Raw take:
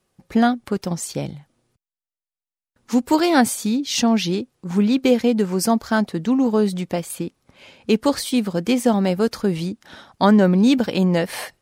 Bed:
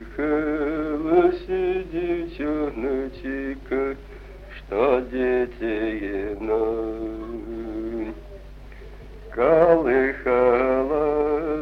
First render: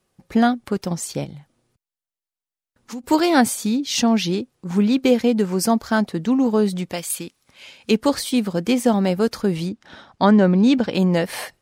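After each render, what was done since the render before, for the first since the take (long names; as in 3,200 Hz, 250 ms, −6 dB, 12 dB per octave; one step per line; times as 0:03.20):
0:01.24–0:03.04: downward compressor 3 to 1, threshold −33 dBFS
0:06.92–0:07.91: tilt shelving filter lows −7 dB, about 1,300 Hz
0:09.69–0:10.94: high-frequency loss of the air 64 metres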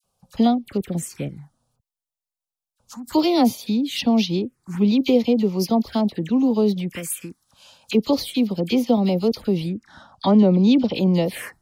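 phaser swept by the level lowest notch 320 Hz, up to 1,600 Hz, full sweep at −17.5 dBFS
all-pass dispersion lows, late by 41 ms, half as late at 1,700 Hz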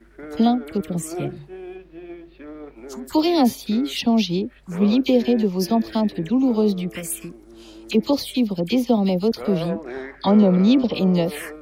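mix in bed −13 dB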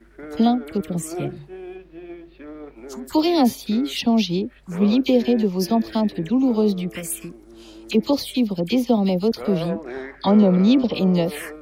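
no processing that can be heard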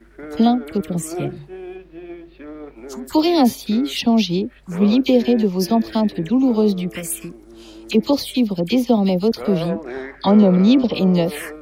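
level +2.5 dB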